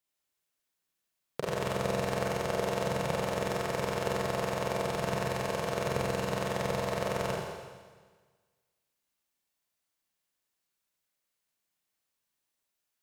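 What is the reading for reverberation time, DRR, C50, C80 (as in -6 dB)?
1.5 s, -3.5 dB, -0.5 dB, 2.0 dB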